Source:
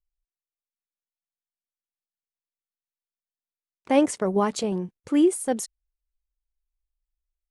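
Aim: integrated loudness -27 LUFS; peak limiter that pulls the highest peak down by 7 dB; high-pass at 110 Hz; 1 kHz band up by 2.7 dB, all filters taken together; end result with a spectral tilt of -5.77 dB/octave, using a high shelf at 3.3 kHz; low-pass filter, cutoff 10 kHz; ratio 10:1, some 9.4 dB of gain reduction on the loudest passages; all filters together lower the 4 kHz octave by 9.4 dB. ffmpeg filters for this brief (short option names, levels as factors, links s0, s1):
-af "highpass=110,lowpass=10000,equalizer=f=1000:t=o:g=4.5,highshelf=f=3300:g=-9,equalizer=f=4000:t=o:g=-6.5,acompressor=threshold=0.0708:ratio=10,volume=1.78,alimiter=limit=0.168:level=0:latency=1"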